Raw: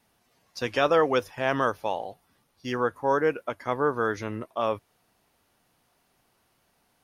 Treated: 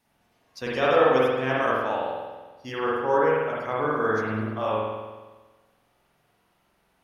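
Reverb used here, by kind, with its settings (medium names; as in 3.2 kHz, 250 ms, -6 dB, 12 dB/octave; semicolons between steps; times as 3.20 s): spring tank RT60 1.3 s, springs 46 ms, chirp 60 ms, DRR -6 dB; trim -4.5 dB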